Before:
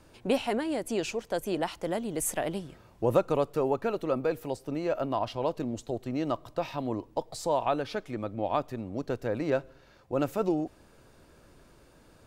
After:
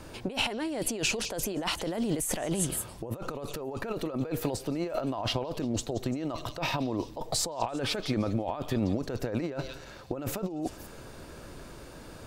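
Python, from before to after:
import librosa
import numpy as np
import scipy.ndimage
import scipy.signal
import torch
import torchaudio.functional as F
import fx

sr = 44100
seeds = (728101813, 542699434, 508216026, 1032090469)

y = fx.echo_stepped(x, sr, ms=172, hz=4500.0, octaves=0.7, feedback_pct=70, wet_db=-6.0)
y = fx.over_compress(y, sr, threshold_db=-37.0, ratio=-1.0)
y = y * 10.0 ** (5.0 / 20.0)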